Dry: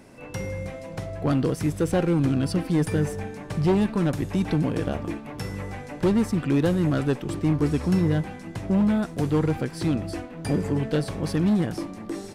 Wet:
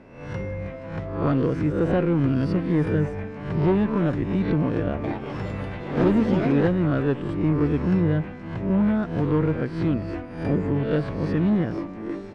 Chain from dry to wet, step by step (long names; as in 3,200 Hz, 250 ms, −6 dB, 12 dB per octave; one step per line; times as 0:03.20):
peak hold with a rise ahead of every peak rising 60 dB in 0.60 s
low-pass filter 2,200 Hz 12 dB per octave
notch filter 780 Hz, Q 14
0:04.78–0:06.97: delay with pitch and tempo change per echo 257 ms, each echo +5 semitones, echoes 2, each echo −6 dB